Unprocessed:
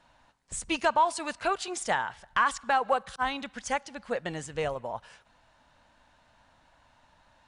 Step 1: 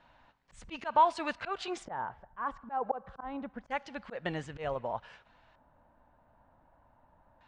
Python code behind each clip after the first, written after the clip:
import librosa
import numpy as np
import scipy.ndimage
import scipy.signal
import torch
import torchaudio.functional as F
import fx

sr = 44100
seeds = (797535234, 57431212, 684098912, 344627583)

y = fx.auto_swell(x, sr, attack_ms=147.0)
y = fx.filter_lfo_lowpass(y, sr, shape='square', hz=0.27, low_hz=910.0, high_hz=3300.0, q=0.79)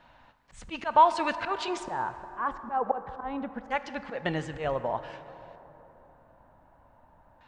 y = fx.rev_plate(x, sr, seeds[0], rt60_s=3.8, hf_ratio=0.4, predelay_ms=0, drr_db=11.5)
y = y * librosa.db_to_amplitude(5.0)